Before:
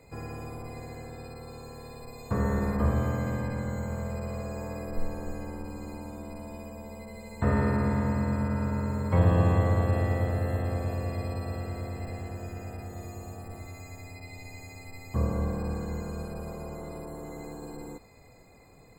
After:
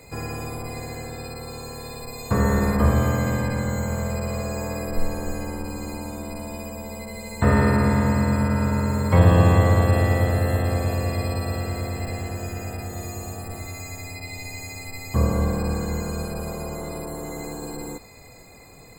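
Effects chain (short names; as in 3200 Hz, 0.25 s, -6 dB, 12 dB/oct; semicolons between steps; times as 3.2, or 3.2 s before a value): high shelf 2500 Hz +8.5 dB; gain +7 dB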